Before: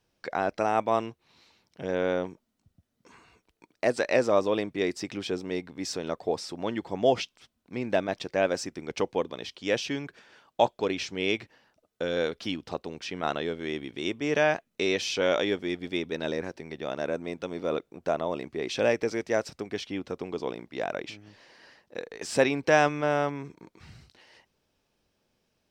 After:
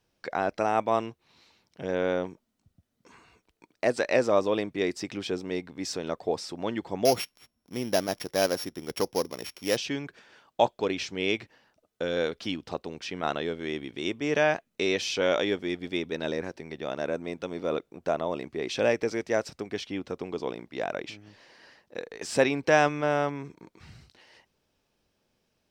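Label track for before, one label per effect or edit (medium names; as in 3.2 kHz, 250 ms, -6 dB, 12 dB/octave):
7.050000	9.770000	sorted samples in blocks of 8 samples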